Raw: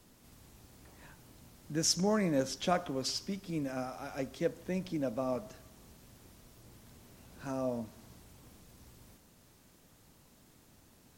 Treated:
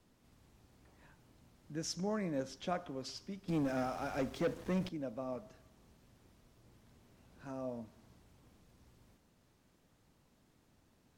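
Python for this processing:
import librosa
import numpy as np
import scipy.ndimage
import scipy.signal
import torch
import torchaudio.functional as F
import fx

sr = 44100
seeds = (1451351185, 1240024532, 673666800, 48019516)

y = fx.lowpass(x, sr, hz=3800.0, slope=6)
y = fx.leveller(y, sr, passes=3, at=(3.48, 4.89))
y = y * librosa.db_to_amplitude(-7.0)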